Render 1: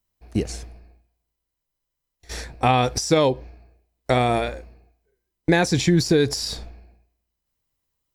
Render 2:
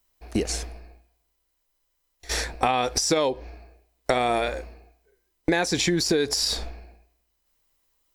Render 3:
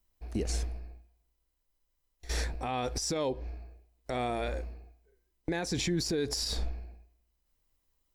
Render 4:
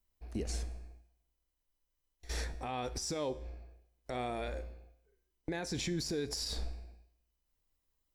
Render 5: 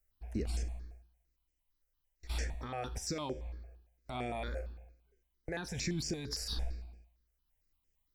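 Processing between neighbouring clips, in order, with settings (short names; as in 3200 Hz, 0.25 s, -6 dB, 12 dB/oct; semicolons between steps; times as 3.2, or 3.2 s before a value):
bell 120 Hz -14 dB 1.6 oct; compressor 4:1, threshold -29 dBFS, peak gain reduction 12.5 dB; gain +8 dB
low shelf 280 Hz +11.5 dB; limiter -14 dBFS, peak gain reduction 10.5 dB; gain -8.5 dB
resonator 75 Hz, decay 0.76 s, harmonics all, mix 50%
step phaser 8.8 Hz 980–3900 Hz; gain +2.5 dB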